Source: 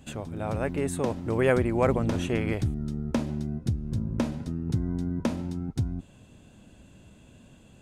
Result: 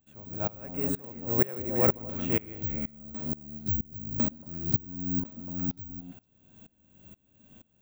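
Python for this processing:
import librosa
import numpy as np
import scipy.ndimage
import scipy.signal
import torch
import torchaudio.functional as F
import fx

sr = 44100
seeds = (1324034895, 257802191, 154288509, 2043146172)

y = (np.kron(x[::2], np.eye(2)[0]) * 2)[:len(x)]
y = fx.clip_hard(y, sr, threshold_db=-24.5, at=(2.77, 3.32))
y = fx.echo_stepped(y, sr, ms=114, hz=250.0, octaves=1.4, feedback_pct=70, wet_db=-2.0)
y = fx.hpss(y, sr, part='harmonic', gain_db=6)
y = fx.tremolo_decay(y, sr, direction='swelling', hz=2.1, depth_db=25)
y = y * librosa.db_to_amplitude(-4.0)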